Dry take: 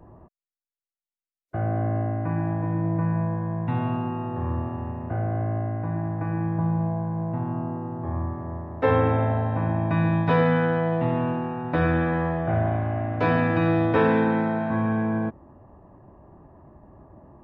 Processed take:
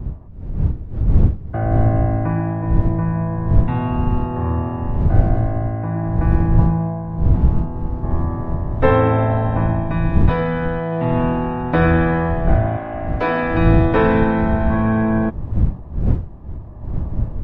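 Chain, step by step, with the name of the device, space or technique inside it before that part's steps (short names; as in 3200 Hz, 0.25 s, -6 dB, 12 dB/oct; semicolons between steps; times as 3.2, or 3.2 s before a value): 12.77–13.55 HPF 270 Hz 12 dB/oct; smartphone video outdoors (wind noise 88 Hz -23 dBFS; AGC gain up to 11 dB; gain -1 dB; AAC 96 kbps 48000 Hz)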